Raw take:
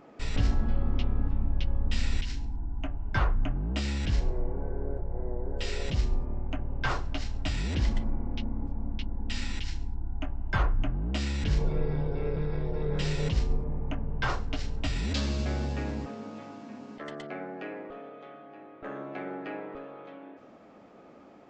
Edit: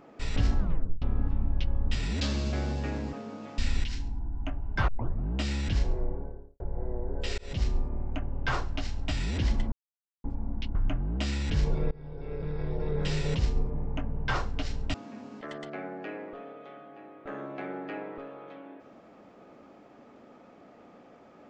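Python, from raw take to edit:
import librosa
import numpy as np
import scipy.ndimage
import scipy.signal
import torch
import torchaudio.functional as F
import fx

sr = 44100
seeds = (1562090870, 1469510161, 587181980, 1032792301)

y = fx.studio_fade_out(x, sr, start_s=4.34, length_s=0.63)
y = fx.edit(y, sr, fx.tape_stop(start_s=0.59, length_s=0.43),
    fx.tape_start(start_s=3.25, length_s=0.37),
    fx.fade_in_span(start_s=5.75, length_s=0.34, curve='qsin'),
    fx.silence(start_s=8.09, length_s=0.52),
    fx.cut(start_s=9.12, length_s=1.57),
    fx.fade_in_from(start_s=11.85, length_s=0.87, floor_db=-23.0),
    fx.move(start_s=14.88, length_s=1.63, to_s=1.95), tone=tone)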